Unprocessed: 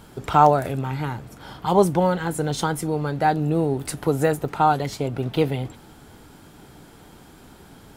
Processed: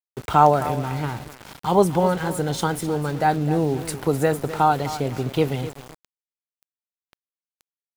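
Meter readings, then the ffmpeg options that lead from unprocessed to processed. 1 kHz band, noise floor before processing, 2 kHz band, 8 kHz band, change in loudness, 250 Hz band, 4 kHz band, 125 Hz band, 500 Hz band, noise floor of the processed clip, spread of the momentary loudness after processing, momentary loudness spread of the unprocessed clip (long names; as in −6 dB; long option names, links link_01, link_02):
0.0 dB, −48 dBFS, +0.5 dB, +0.5 dB, 0.0 dB, 0.0 dB, +0.5 dB, 0.0 dB, 0.0 dB, below −85 dBFS, 12 LU, 12 LU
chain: -af "aecho=1:1:256|512|768:0.211|0.0592|0.0166,aeval=exprs='val(0)*gte(abs(val(0)),0.0188)':channel_layout=same"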